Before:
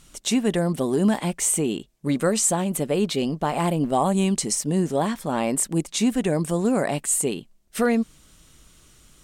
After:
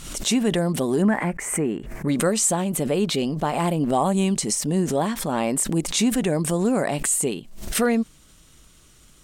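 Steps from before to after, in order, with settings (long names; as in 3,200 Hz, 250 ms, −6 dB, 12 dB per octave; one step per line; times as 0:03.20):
0:01.02–0:02.08: high shelf with overshoot 2,600 Hz −10.5 dB, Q 3
background raised ahead of every attack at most 64 dB per second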